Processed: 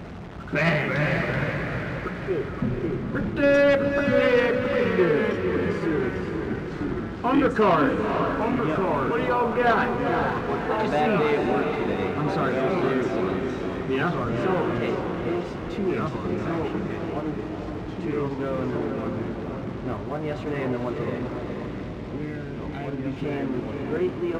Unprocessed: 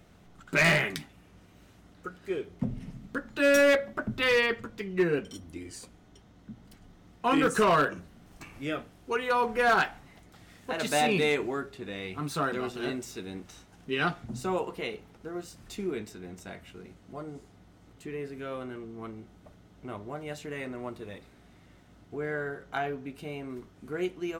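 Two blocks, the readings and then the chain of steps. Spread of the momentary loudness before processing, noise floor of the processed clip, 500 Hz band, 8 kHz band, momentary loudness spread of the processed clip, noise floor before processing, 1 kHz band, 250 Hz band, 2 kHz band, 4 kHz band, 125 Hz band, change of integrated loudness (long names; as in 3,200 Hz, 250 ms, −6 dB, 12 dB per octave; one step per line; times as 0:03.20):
21 LU, −34 dBFS, +7.0 dB, can't be measured, 11 LU, −57 dBFS, +5.5 dB, +9.0 dB, +2.0 dB, −1.0 dB, +10.5 dB, +4.0 dB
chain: converter with a step at zero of −36 dBFS
head-to-tape spacing loss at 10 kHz 33 dB
gain on a spectral selection 0:21.66–0:23.25, 370–1,900 Hz −11 dB
high-pass filter 41 Hz
delay with pitch and tempo change per echo 262 ms, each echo −2 semitones, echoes 3, each echo −6 dB
in parallel at −2.5 dB: output level in coarse steps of 12 dB
on the sum: leveller curve on the samples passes 1
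on a send: feedback delay with all-pass diffusion 484 ms, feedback 48%, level −5 dB
on the sum: level −1 dB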